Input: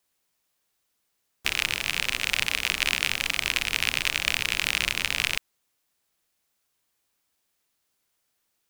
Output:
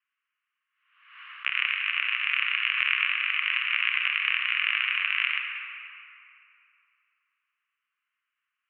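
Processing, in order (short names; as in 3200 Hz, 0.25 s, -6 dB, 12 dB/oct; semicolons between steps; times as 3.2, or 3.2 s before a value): Chebyshev band-pass 1100–2900 Hz, order 4; on a send at -2 dB: reverb RT60 3.1 s, pre-delay 32 ms; on the sum: backwards sustainer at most 75 dB/s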